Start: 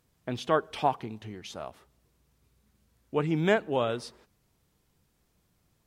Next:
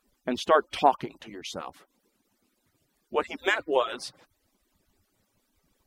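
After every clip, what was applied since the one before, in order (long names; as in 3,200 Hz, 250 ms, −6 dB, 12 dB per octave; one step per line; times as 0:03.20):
harmonic-percussive split with one part muted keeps percussive
level +5.5 dB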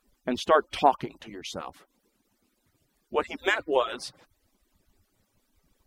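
low-shelf EQ 85 Hz +7 dB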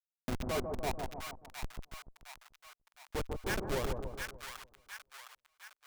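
comparator with hysteresis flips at −25.5 dBFS
brickwall limiter −35.5 dBFS, peak gain reduction 10.5 dB
echo with a time of its own for lows and highs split 1,000 Hz, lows 146 ms, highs 711 ms, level −4 dB
level +4 dB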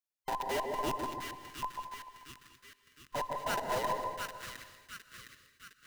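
frequency inversion band by band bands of 1,000 Hz
reverb whose tail is shaped and stops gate 260 ms rising, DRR 10 dB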